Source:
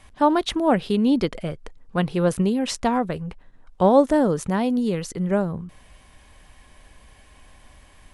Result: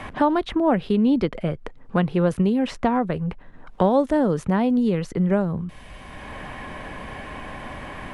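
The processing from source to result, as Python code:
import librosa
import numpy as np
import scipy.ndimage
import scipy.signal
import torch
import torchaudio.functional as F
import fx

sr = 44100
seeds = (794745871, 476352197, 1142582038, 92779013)

y = fx.bass_treble(x, sr, bass_db=2, treble_db=-11)
y = fx.band_squash(y, sr, depth_pct=70)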